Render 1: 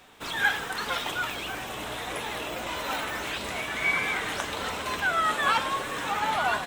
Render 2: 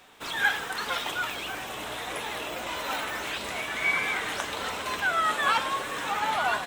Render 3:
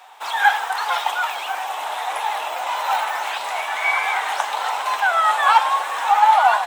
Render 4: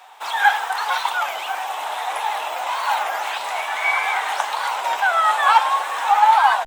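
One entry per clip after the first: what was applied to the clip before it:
low-shelf EQ 250 Hz −5.5 dB
high-pass with resonance 820 Hz, resonance Q 4.9; level +3.5 dB
wow of a warped record 33 1/3 rpm, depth 160 cents

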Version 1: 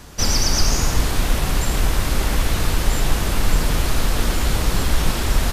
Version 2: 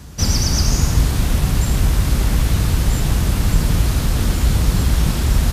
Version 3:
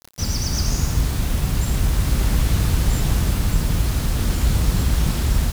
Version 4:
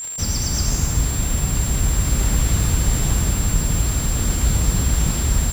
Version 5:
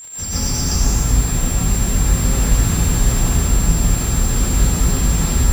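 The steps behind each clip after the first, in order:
high-pass filter 54 Hz; bass and treble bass +12 dB, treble +3 dB; level −3 dB
automatic gain control gain up to 15 dB; bit reduction 5 bits; level −6.5 dB
surface crackle 240 per second −26 dBFS; steady tone 7,400 Hz −27 dBFS
convolution reverb RT60 0.40 s, pre-delay 117 ms, DRR −9 dB; level −6.5 dB

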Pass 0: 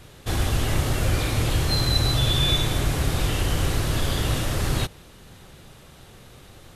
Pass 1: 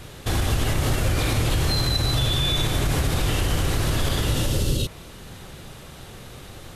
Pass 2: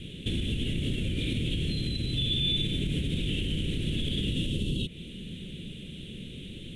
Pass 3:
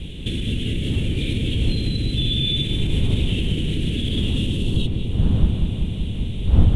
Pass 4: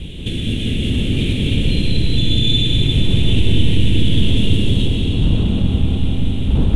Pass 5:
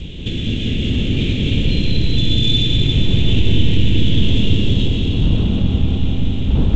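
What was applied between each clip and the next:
healed spectral selection 0:04.23–0:05.03, 610–2,600 Hz both; in parallel at +0.5 dB: downward compressor, threshold −28 dBFS, peak gain reduction 12.5 dB; on the sum: brickwall limiter −13 dBFS, peak gain reduction 7 dB
flat-topped bell 1,300 Hz −9.5 dB; downward compressor 3 to 1, threshold −27 dBFS, peak gain reduction 7.5 dB; drawn EQ curve 120 Hz 0 dB, 190 Hz +11 dB, 450 Hz −1 dB, 760 Hz −19 dB, 1,100 Hz −18 dB, 2,100 Hz +4 dB, 3,400 Hz +9 dB, 4,800 Hz −16 dB, 9,600 Hz −5 dB, 14,000 Hz −28 dB; level −3 dB
wind on the microphone 85 Hz −27 dBFS; feedback echo with a low-pass in the loop 192 ms, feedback 78%, low-pass 2,000 Hz, level −5 dB; level +4.5 dB
sine wavefolder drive 9 dB, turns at −1 dBFS; comb and all-pass reverb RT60 4.9 s, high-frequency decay 0.85×, pre-delay 85 ms, DRR −1.5 dB; level −10 dB
G.722 64 kbit/s 16,000 Hz

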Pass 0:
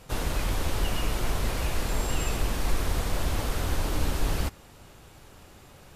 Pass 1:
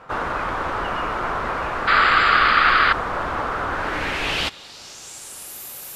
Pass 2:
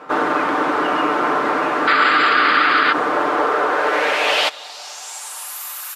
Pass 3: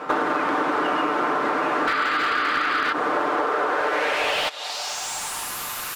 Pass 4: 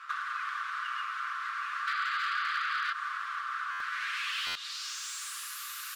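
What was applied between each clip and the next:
sound drawn into the spectrogram noise, 0:01.87–0:02.93, 1,100–5,000 Hz −24 dBFS; low-pass filter sweep 1,300 Hz → 13,000 Hz, 0:03.70–0:05.60; RIAA equalisation recording; level +8 dB
high-pass filter sweep 290 Hz → 1,200 Hz, 0:02.88–0:05.94; brickwall limiter −11 dBFS, peak gain reduction 7 dB; comb filter 6.7 ms, depth 46%; level +4.5 dB
downward compressor 12 to 1, threshold −24 dBFS, peak gain reduction 14 dB; slew-rate limiting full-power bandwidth 130 Hz; level +5 dB
Chebyshev high-pass with heavy ripple 1,100 Hz, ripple 3 dB; buffer that repeats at 0:03.71/0:04.46, samples 512, times 7; level −7.5 dB

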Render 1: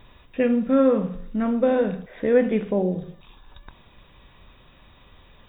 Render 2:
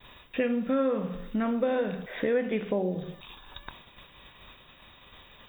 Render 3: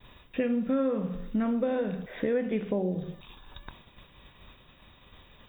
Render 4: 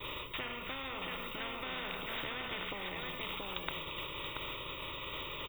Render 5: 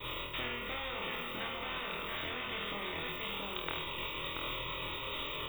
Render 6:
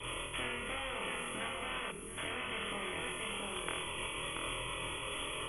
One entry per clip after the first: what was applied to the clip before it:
downward expander −46 dBFS; spectral tilt +2 dB per octave; downward compressor 3 to 1, threshold −32 dBFS, peak gain reduction 13 dB; level +5 dB
low-shelf EQ 400 Hz +8 dB; level −5 dB
phaser with its sweep stopped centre 1,100 Hz, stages 8; on a send: single-tap delay 680 ms −9.5 dB; on the sum: every bin compressed towards the loudest bin 10 to 1; level +2 dB
speech leveller; flutter between parallel walls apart 4.2 metres, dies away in 0.48 s; level −1 dB
hearing-aid frequency compression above 2,800 Hz 1.5 to 1; hum removal 78.16 Hz, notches 15; gain on a spectral selection 0:01.91–0:02.18, 460–5,200 Hz −13 dB

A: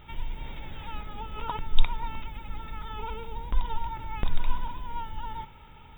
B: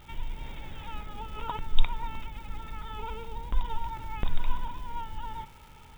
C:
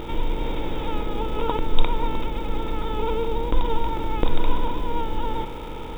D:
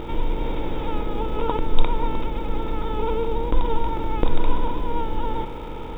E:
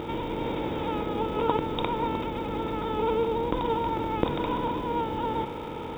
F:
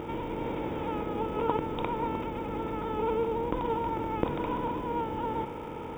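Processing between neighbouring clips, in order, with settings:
surface crackle 600 per second −46 dBFS; level −1.5 dB
compressor on every frequency bin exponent 0.6; hollow resonant body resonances 330/470 Hz, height 16 dB, ringing for 30 ms; level +2 dB
high-shelf EQ 3,300 Hz −8 dB; level +1 dB
high-pass filter 97 Hz 12 dB per octave
parametric band 3,900 Hz −15 dB 0.34 octaves; level −3 dB

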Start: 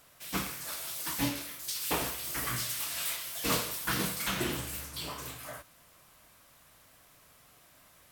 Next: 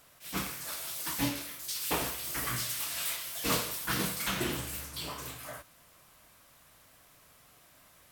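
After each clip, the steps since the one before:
level that may rise only so fast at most 220 dB per second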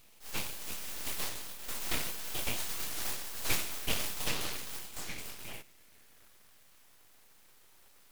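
high-pass filter sweep 1,200 Hz → 180 Hz, 0:05.36–0:07.73
full-wave rectification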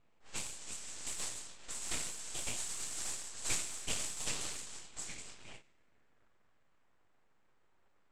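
low-pass with resonance 7,800 Hz, resonance Q 5.1
low-pass that shuts in the quiet parts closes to 1,400 Hz, open at −30 dBFS
every ending faded ahead of time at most 210 dB per second
level −7 dB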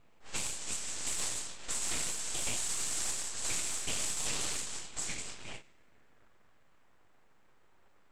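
brickwall limiter −30 dBFS, peak gain reduction 10 dB
level +7.5 dB

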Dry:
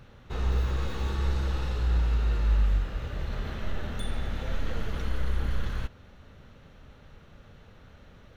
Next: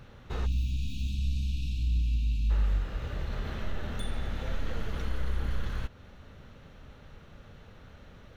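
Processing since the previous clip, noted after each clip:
time-frequency box erased 0:00.46–0:02.50, 320–2,300 Hz
in parallel at −1 dB: downward compressor, threshold −34 dBFS, peak gain reduction 14 dB
on the sum: level −4.5 dB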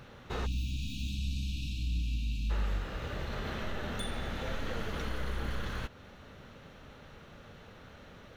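low-shelf EQ 110 Hz −11 dB
level +3 dB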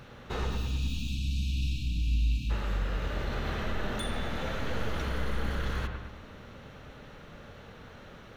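delay with a low-pass on its return 106 ms, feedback 54%, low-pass 2,500 Hz, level −4.5 dB
level +2 dB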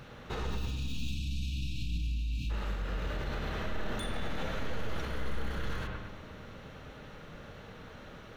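brickwall limiter −27 dBFS, peak gain reduction 8 dB
on a send at −13 dB: convolution reverb RT60 1.5 s, pre-delay 6 ms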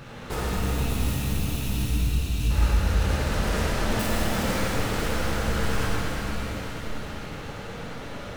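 stylus tracing distortion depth 0.47 ms
reverb with rising layers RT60 3.9 s, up +7 semitones, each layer −8 dB, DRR −4 dB
level +5.5 dB

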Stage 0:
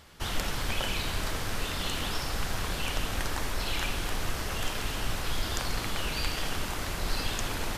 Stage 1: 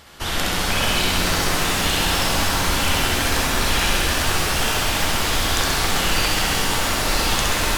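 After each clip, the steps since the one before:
low-shelf EQ 200 Hz −5 dB
flutter between parallel walls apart 11.3 metres, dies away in 1.2 s
reverb with rising layers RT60 3.8 s, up +7 semitones, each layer −2 dB, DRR 3.5 dB
level +8 dB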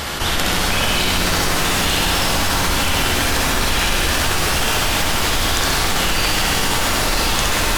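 envelope flattener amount 70%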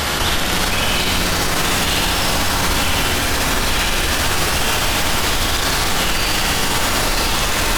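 brickwall limiter −13.5 dBFS, peak gain reduction 9.5 dB
level +5.5 dB

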